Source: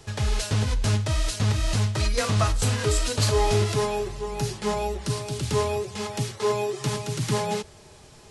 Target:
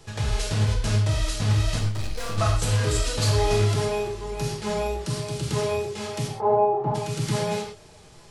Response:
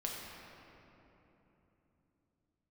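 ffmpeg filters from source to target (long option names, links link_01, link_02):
-filter_complex "[0:a]asettb=1/sr,asplit=3[link_01][link_02][link_03];[link_01]atrim=end=1.794[link_04];[link_02]atrim=start=1.79:end=2.38,asetpts=PTS-STARTPTS,afade=type=in:duration=0.004:curve=qsin,afade=type=out:start_time=0.586:duration=0.004:curve=qsin,aeval=exprs='(tanh(28.2*val(0)+0.6)-tanh(0.6))/28.2':channel_layout=same[link_05];[link_03]atrim=start=2.376[link_06];[link_04][link_05]acrossfade=duration=0.004:curve1=hsin:curve2=qsin[link_07];[link_07][link_06]acrossfade=duration=0.004:curve1=qsin:curve2=hsin,asplit=3[link_08][link_09][link_10];[link_08]afade=type=out:start_time=6.27:duration=0.02[link_11];[link_09]lowpass=frequency=800:width_type=q:width=6.2,afade=type=in:start_time=6.27:duration=0.02,afade=type=out:start_time=6.94:duration=0.02[link_12];[link_10]afade=type=in:start_time=6.94:duration=0.02[link_13];[link_11][link_12][link_13]amix=inputs=3:normalize=0[link_14];[1:a]atrim=start_sample=2205,afade=type=out:start_time=0.18:duration=0.01,atrim=end_sample=8379[link_15];[link_14][link_15]afir=irnorm=-1:irlink=0"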